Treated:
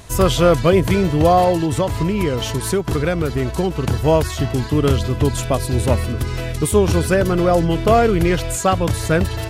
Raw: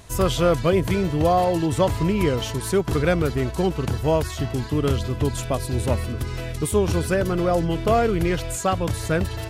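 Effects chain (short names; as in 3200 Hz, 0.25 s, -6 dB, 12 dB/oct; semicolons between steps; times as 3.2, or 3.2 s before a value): 1.52–3.87 compressor 4:1, threshold -21 dBFS, peak gain reduction 6.5 dB; gain +5.5 dB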